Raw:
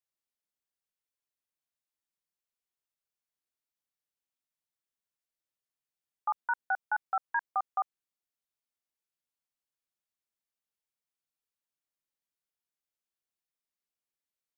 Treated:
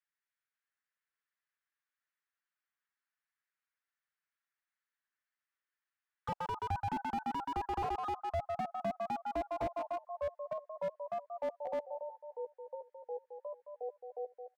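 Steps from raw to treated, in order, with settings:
on a send: feedback echo with a high-pass in the loop 129 ms, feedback 24%, high-pass 620 Hz, level −6 dB
on the sum: envelope filter 760–1,700 Hz, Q 3.7, down, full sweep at −29.5 dBFS
comb filter 7.5 ms, depth 55%
delay with pitch and tempo change per echo 365 ms, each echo −3 semitones, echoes 3, each echo −6 dB
frequency shifter +32 Hz
slew-rate limiting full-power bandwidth 6.2 Hz
level +8.5 dB

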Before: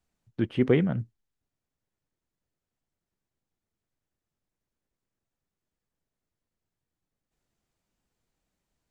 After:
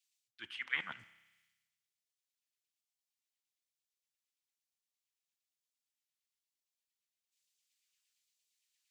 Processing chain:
reversed playback
downward compressor 6 to 1, threshold −33 dBFS, peak gain reduction 16.5 dB
reversed playback
all-pass phaser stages 2, 1.1 Hz, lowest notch 380–1,000 Hz
auto-filter high-pass saw down 8.7 Hz 750–2,600 Hz
spring reverb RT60 1.8 s, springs 31 ms, chirp 50 ms, DRR 14.5 dB
multiband upward and downward expander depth 70%
level +4 dB

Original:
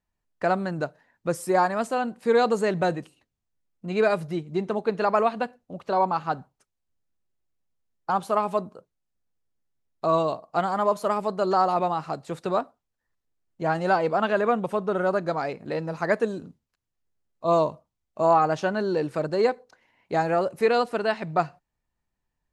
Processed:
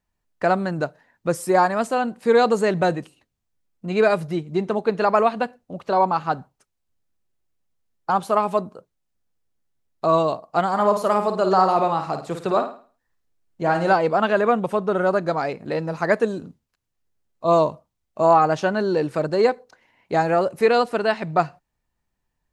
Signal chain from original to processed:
0:10.68–0:13.93: flutter between parallel walls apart 9.1 metres, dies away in 0.4 s
level +4 dB

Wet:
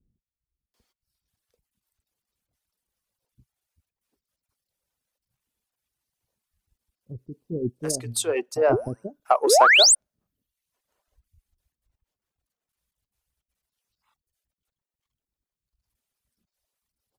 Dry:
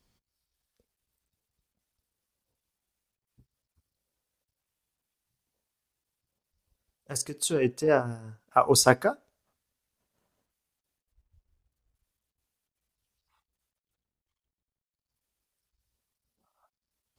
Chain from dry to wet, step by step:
reverb reduction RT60 0.85 s
dynamic equaliser 650 Hz, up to +8 dB, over −36 dBFS, Q 1.4
downward compressor 6 to 1, threshold −16 dBFS, peak gain reduction 8.5 dB
sound drawn into the spectrogram rise, 0:08.72–0:09.21, 310–9,700 Hz −17 dBFS
in parallel at −7.5 dB: soft clipping −16 dBFS, distortion −13 dB
on the sum: multiband delay without the direct sound lows, highs 740 ms, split 360 Hz

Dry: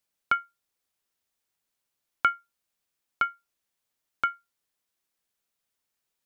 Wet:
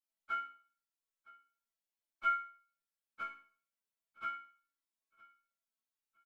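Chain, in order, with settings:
random phases in long frames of 50 ms
hum removal 68.41 Hz, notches 21
0:02.28–0:04.30: parametric band 140 Hz +10.5 dB 0.77 octaves
resonators tuned to a chord A3 major, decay 0.43 s
on a send: repeating echo 962 ms, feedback 26%, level −22.5 dB
on the sum: level +5.5 dB

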